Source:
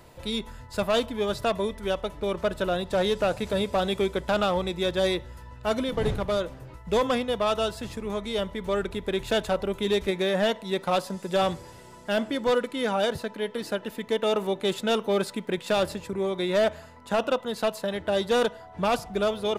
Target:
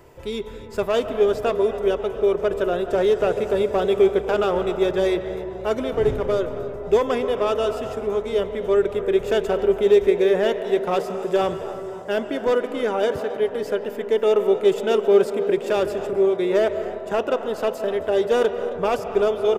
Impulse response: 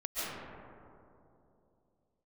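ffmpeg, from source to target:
-filter_complex "[0:a]equalizer=frequency=200:width_type=o:width=0.33:gain=-6,equalizer=frequency=400:width_type=o:width=0.33:gain=11,equalizer=frequency=4000:width_type=o:width=0.33:gain=-10,equalizer=frequency=10000:width_type=o:width=0.33:gain=-7,asplit=5[link_01][link_02][link_03][link_04][link_05];[link_02]adelay=268,afreqshift=79,volume=-18dB[link_06];[link_03]adelay=536,afreqshift=158,volume=-24dB[link_07];[link_04]adelay=804,afreqshift=237,volume=-30dB[link_08];[link_05]adelay=1072,afreqshift=316,volume=-36.1dB[link_09];[link_01][link_06][link_07][link_08][link_09]amix=inputs=5:normalize=0,asplit=2[link_10][link_11];[1:a]atrim=start_sample=2205,lowpass=3800[link_12];[link_11][link_12]afir=irnorm=-1:irlink=0,volume=-14.5dB[link_13];[link_10][link_13]amix=inputs=2:normalize=0"

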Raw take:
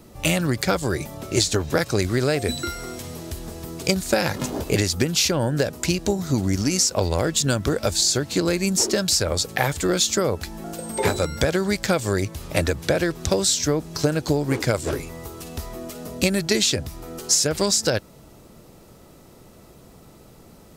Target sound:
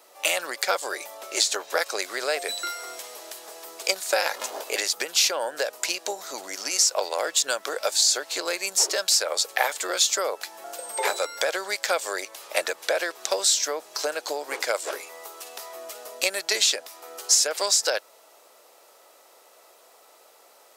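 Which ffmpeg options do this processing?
ffmpeg -i in.wav -af "highpass=frequency=550:width=0.5412,highpass=frequency=550:width=1.3066" out.wav

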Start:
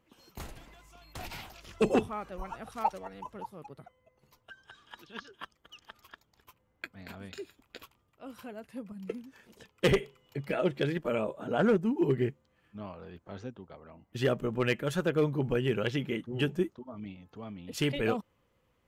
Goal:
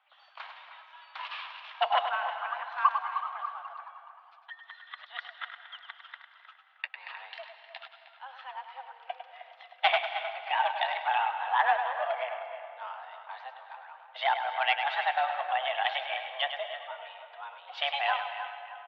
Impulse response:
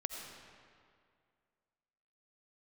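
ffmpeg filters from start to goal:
-filter_complex "[0:a]asplit=2[link_01][link_02];[link_02]adelay=311,lowpass=frequency=2300:poles=1,volume=-10.5dB,asplit=2[link_03][link_04];[link_04]adelay=311,lowpass=frequency=2300:poles=1,volume=0.42,asplit=2[link_05][link_06];[link_06]adelay=311,lowpass=frequency=2300:poles=1,volume=0.42,asplit=2[link_07][link_08];[link_08]adelay=311,lowpass=frequency=2300:poles=1,volume=0.42[link_09];[link_01][link_03][link_05][link_07][link_09]amix=inputs=5:normalize=0,asplit=2[link_10][link_11];[1:a]atrim=start_sample=2205,adelay=102[link_12];[link_11][link_12]afir=irnorm=-1:irlink=0,volume=-6.5dB[link_13];[link_10][link_13]amix=inputs=2:normalize=0,highpass=frequency=510:width_type=q:width=0.5412,highpass=frequency=510:width_type=q:width=1.307,lowpass=frequency=3500:width_type=q:width=0.5176,lowpass=frequency=3500:width_type=q:width=0.7071,lowpass=frequency=3500:width_type=q:width=1.932,afreqshift=270,volume=5dB"

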